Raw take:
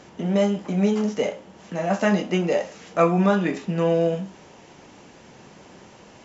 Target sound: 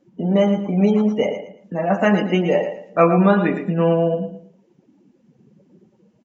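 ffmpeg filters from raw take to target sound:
-af "afftdn=nr=29:nf=-35,aecho=1:1:113|226|339:0.355|0.0993|0.0278,volume=4dB"

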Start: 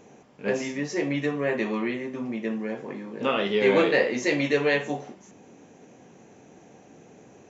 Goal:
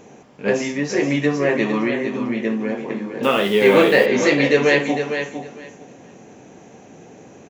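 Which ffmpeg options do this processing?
-filter_complex "[0:a]aecho=1:1:456|912|1368:0.398|0.0677|0.0115,asettb=1/sr,asplit=3[a][b][c];[a]atrim=end=3.234[d];[b]atrim=start=3.23:end=4.06,asetpts=PTS-STARTPTS,afade=t=in:d=0.004:c=qsin,afade=t=out:st=0.826:d=0.004:c=qsin,acrusher=bits=8:dc=4:mix=0:aa=0.000001[e];[c]atrim=start=4.056[f];[d][e]acrossfade=d=0.004:c1=hsin:c2=qsin[g];[g][f]acrossfade=d=0.004:c1=qsin:c2=hsin,volume=7dB"

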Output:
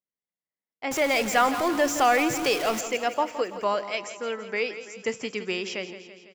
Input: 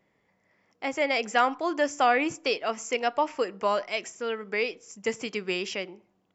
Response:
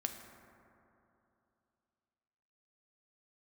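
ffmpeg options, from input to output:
-filter_complex "[0:a]asettb=1/sr,asplit=3[a][b][c];[a]atrim=end=0.914[d];[b]atrim=start=0.91:end=2.81,asetpts=PTS-STARTPTS,afade=t=in:d=0.004:c=qsin,afade=t=out:st=1.896:d=0.004:c=qsin,aeval=exprs='val(0)+0.5*0.0447*sgn(val(0))':c=same[e];[c]atrim=start=2.806[f];[d][e]acrossfade=d=0.004:c1=hsin:c2=qsin[g];[g][f]acrossfade=d=0.004:c1=qsin:c2=hsin,agate=range=-33dB:threshold=-46dB:ratio=3:detection=peak,aecho=1:1:167|334|501|668|835|1002|1169:0.237|0.14|0.0825|0.0487|0.0287|0.017|0.01"

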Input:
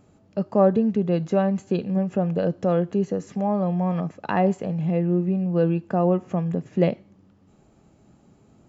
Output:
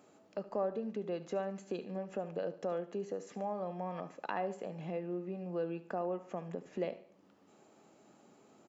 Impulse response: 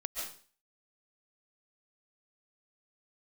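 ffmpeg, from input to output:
-filter_complex "[0:a]highpass=350,acompressor=threshold=-43dB:ratio=2,aecho=1:1:72|144|216|288:0.141|0.065|0.0299|0.0137,asplit=2[a][b];[1:a]atrim=start_sample=2205,asetrate=83790,aresample=44100[c];[b][c]afir=irnorm=-1:irlink=0,volume=-11.5dB[d];[a][d]amix=inputs=2:normalize=0,volume=-1.5dB"

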